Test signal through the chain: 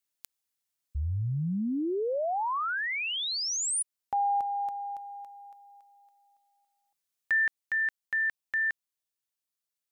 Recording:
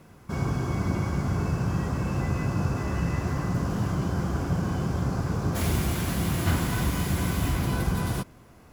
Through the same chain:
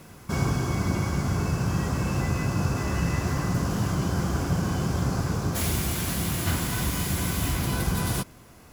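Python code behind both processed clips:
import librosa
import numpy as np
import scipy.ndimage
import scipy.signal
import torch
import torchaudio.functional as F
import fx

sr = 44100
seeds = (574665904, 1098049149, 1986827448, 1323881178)

y = fx.high_shelf(x, sr, hz=2800.0, db=8.0)
y = fx.rider(y, sr, range_db=4, speed_s=0.5)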